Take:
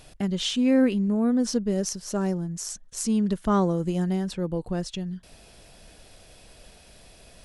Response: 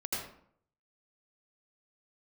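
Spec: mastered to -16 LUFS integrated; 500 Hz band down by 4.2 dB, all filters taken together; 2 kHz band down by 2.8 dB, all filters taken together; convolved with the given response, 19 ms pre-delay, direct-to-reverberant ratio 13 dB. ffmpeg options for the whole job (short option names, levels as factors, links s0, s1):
-filter_complex "[0:a]equalizer=f=500:t=o:g=-5,equalizer=f=2000:t=o:g=-3.5,asplit=2[s0][s1];[1:a]atrim=start_sample=2205,adelay=19[s2];[s1][s2]afir=irnorm=-1:irlink=0,volume=0.141[s3];[s0][s3]amix=inputs=2:normalize=0,volume=3.35"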